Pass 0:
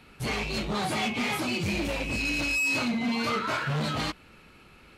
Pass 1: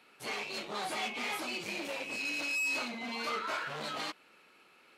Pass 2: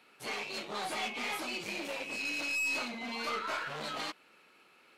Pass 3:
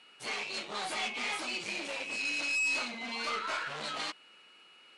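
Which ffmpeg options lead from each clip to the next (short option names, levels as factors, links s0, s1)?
-af "highpass=390,volume=0.501"
-af "aeval=exprs='0.0631*(cos(1*acos(clip(val(0)/0.0631,-1,1)))-cos(1*PI/2))+0.00501*(cos(2*acos(clip(val(0)/0.0631,-1,1)))-cos(2*PI/2))+0.000501*(cos(7*acos(clip(val(0)/0.0631,-1,1)))-cos(7*PI/2))':c=same"
-af "aresample=22050,aresample=44100,aeval=exprs='val(0)+0.000891*sin(2*PI*2900*n/s)':c=same,tiltshelf=f=970:g=-3"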